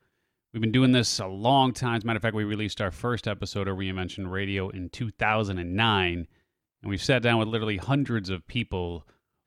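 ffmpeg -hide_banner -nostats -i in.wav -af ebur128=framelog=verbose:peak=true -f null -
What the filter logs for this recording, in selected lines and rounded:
Integrated loudness:
  I:         -26.6 LUFS
  Threshold: -36.9 LUFS
Loudness range:
  LRA:         4.1 LU
  Threshold: -47.3 LUFS
  LRA low:   -29.5 LUFS
  LRA high:  -25.4 LUFS
True peak:
  Peak:       -7.8 dBFS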